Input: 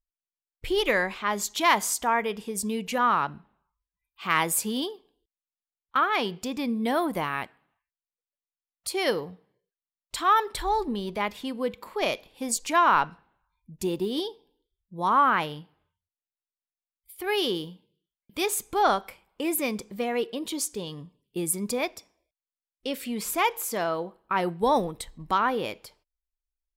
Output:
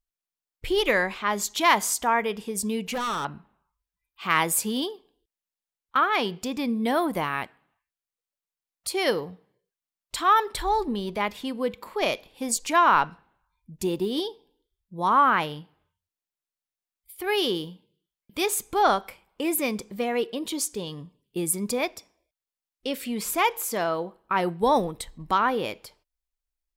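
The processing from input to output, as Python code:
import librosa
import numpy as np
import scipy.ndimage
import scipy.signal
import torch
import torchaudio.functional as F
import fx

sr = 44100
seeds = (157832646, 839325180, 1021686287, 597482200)

y = fx.clip_hard(x, sr, threshold_db=-27.5, at=(2.82, 3.25))
y = F.gain(torch.from_numpy(y), 1.5).numpy()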